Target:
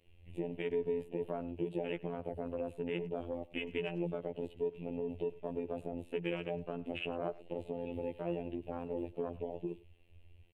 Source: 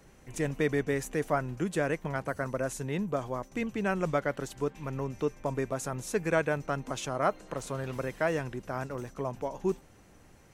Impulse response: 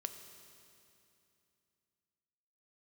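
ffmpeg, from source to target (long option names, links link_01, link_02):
-filter_complex "[0:a]acrossover=split=100|290|2200[link_01][link_02][link_03][link_04];[link_01]acompressor=threshold=-58dB:ratio=4[link_05];[link_02]acompressor=threshold=-38dB:ratio=4[link_06];[link_03]acompressor=threshold=-33dB:ratio=4[link_07];[link_04]acompressor=threshold=-49dB:ratio=4[link_08];[link_05][link_06][link_07][link_08]amix=inputs=4:normalize=0,firequalizer=gain_entry='entry(120,0);entry(180,-11);entry(360,-1);entry(1400,-19);entry(2700,10);entry(5800,-28);entry(8800,-11)':delay=0.05:min_phase=1,afwtdn=0.00794,alimiter=level_in=10dB:limit=-24dB:level=0:latency=1:release=34,volume=-10dB,afftfilt=real='hypot(re,im)*cos(PI*b)':imag='0':win_size=2048:overlap=0.75,asplit=2[link_09][link_10];[link_10]adelay=100,highpass=300,lowpass=3400,asoftclip=type=hard:threshold=-38.5dB,volume=-19dB[link_11];[link_09][link_11]amix=inputs=2:normalize=0,volume=9.5dB"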